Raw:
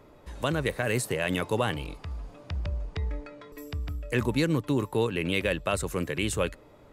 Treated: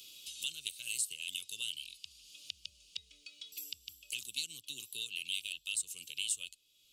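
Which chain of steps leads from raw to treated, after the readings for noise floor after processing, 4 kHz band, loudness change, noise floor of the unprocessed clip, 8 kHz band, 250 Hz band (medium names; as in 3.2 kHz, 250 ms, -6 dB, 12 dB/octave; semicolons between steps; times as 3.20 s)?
-68 dBFS, 0.0 dB, -9.5 dB, -54 dBFS, +1.5 dB, -38.5 dB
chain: elliptic high-pass 2.9 kHz, stop band 40 dB; dynamic bell 8.2 kHz, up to +7 dB, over -54 dBFS, Q 2.4; three bands compressed up and down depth 70%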